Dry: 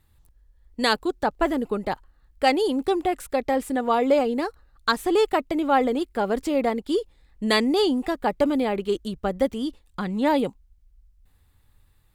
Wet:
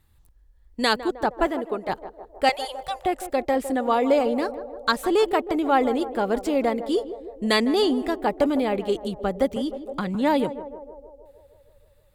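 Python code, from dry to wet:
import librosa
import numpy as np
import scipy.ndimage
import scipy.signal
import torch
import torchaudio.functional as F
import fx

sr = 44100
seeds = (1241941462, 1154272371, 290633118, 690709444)

p1 = fx.bass_treble(x, sr, bass_db=-13, treble_db=-6, at=(1.47, 1.89))
p2 = fx.ellip_bandstop(p1, sr, low_hz=160.0, high_hz=560.0, order=3, stop_db=40, at=(2.49, 3.06))
p3 = p2 + fx.echo_banded(p2, sr, ms=156, feedback_pct=70, hz=560.0, wet_db=-11.5, dry=0)
y = fx.band_squash(p3, sr, depth_pct=70, at=(9.56, 10.15))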